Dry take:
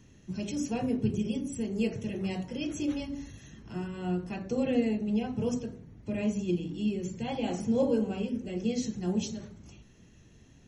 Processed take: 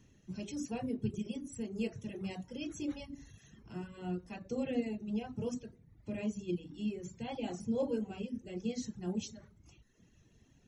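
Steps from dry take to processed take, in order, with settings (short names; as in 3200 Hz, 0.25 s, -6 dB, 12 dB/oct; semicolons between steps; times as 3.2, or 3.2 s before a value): reverb removal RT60 0.86 s; gain -6 dB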